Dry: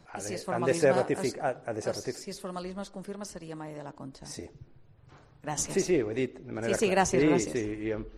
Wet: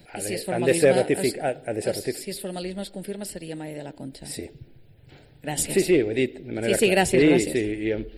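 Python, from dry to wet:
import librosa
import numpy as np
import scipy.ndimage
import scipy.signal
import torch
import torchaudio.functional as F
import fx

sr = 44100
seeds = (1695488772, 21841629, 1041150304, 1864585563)

p1 = fx.bass_treble(x, sr, bass_db=-4, treble_db=9)
p2 = fx.fixed_phaser(p1, sr, hz=2700.0, stages=4)
p3 = np.clip(p2, -10.0 ** (-21.0 / 20.0), 10.0 ** (-21.0 / 20.0))
p4 = p2 + F.gain(torch.from_numpy(p3), -8.0).numpy()
y = F.gain(torch.from_numpy(p4), 6.0).numpy()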